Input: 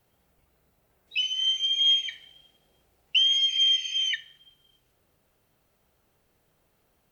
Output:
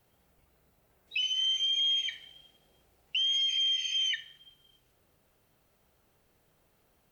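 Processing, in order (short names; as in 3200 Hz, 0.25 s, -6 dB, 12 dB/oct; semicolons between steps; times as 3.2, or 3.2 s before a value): limiter -23.5 dBFS, peak gain reduction 10 dB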